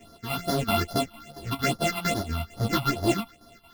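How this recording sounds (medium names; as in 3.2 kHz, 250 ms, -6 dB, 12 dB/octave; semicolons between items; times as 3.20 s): a buzz of ramps at a fixed pitch in blocks of 64 samples; phasing stages 6, 2.4 Hz, lowest notch 450–2500 Hz; chopped level 4.4 Hz, depth 60%, duty 75%; a shimmering, thickened sound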